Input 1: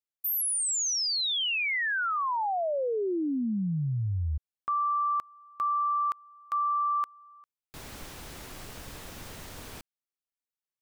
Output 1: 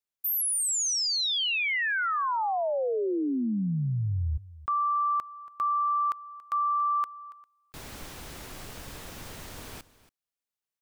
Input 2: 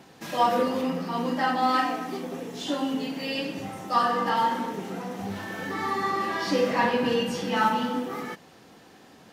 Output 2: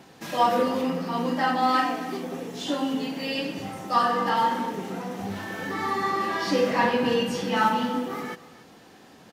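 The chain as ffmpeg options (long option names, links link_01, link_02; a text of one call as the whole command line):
ffmpeg -i in.wav -af "aecho=1:1:281:0.119,volume=1dB" out.wav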